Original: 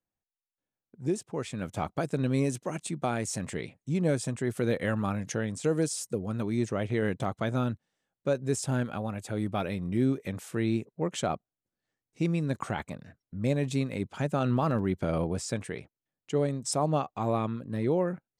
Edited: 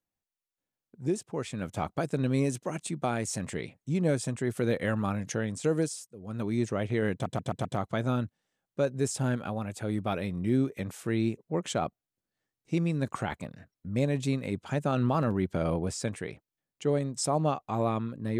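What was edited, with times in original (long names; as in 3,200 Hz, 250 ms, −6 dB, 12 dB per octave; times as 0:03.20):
0:05.79–0:06.46: duck −21.5 dB, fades 0.33 s
0:07.13: stutter 0.13 s, 5 plays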